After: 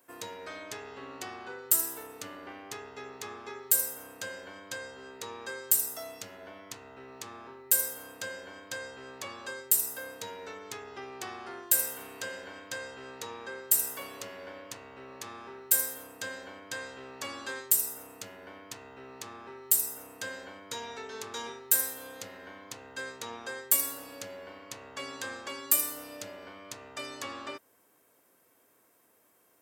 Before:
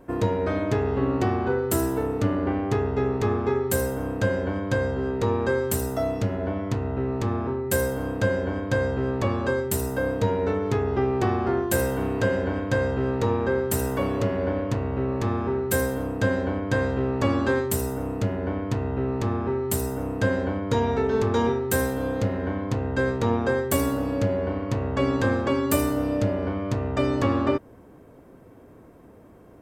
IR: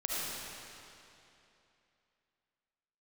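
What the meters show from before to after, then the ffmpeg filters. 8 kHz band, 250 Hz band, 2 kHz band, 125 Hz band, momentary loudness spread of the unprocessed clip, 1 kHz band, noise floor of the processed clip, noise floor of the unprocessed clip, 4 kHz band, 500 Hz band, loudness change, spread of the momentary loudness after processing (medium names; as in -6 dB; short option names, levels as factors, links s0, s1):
+5.0 dB, -24.0 dB, -8.5 dB, -32.0 dB, 4 LU, -13.0 dB, -67 dBFS, -49 dBFS, -1.5 dB, -19.5 dB, -5.5 dB, 19 LU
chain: -af "aderivative,volume=1.58"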